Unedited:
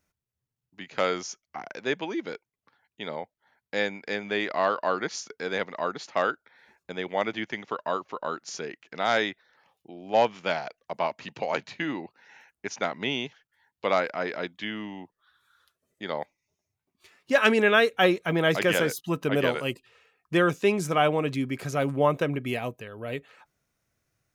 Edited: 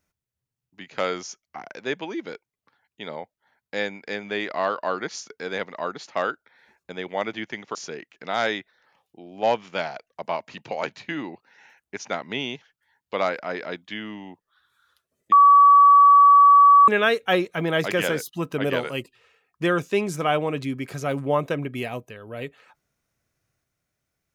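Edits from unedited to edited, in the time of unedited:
0:07.75–0:08.46: remove
0:16.03–0:17.59: beep over 1,140 Hz −9 dBFS

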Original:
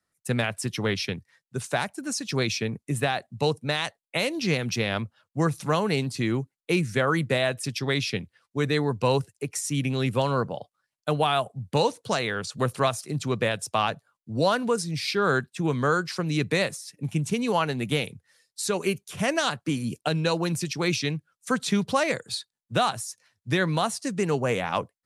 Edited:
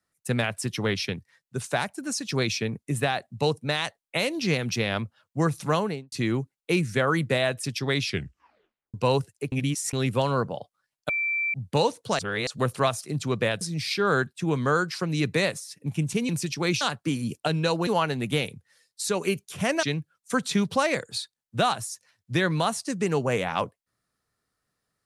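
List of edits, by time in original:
0:05.75–0:06.12: fade out and dull
0:08.06: tape stop 0.88 s
0:09.52–0:09.93: reverse
0:11.09–0:11.54: beep over 2,340 Hz −23.5 dBFS
0:12.19–0:12.47: reverse
0:13.61–0:14.78: remove
0:17.46–0:19.42: swap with 0:20.48–0:21.00

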